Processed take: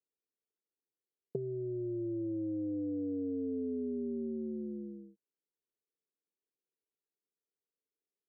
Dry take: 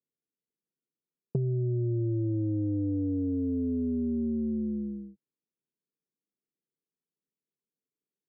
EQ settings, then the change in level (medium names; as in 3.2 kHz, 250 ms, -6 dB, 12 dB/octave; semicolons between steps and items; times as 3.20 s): band-pass filter 450 Hz, Q 1.9; 0.0 dB